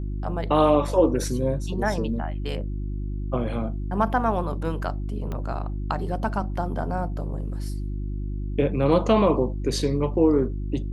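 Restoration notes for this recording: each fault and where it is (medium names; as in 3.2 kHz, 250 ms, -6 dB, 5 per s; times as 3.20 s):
hum 50 Hz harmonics 7 -29 dBFS
5.32 s: pop -20 dBFS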